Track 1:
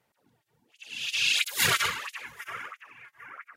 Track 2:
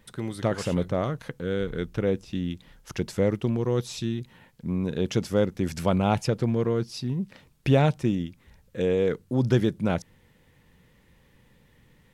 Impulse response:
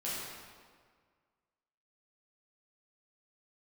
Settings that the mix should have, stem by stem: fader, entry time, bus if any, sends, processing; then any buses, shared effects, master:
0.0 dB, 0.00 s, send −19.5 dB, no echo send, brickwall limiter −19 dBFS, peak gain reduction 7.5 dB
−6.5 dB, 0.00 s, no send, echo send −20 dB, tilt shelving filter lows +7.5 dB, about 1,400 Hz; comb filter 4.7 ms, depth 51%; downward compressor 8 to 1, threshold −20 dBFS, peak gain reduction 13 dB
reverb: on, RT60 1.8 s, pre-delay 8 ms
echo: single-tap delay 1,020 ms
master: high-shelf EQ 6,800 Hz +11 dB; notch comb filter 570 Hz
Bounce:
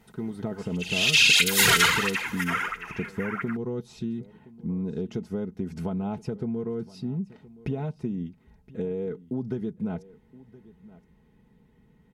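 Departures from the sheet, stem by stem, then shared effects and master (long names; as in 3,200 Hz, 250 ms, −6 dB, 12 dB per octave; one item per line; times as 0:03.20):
stem 1 0.0 dB → +11.0 dB
master: missing high-shelf EQ 6,800 Hz +11 dB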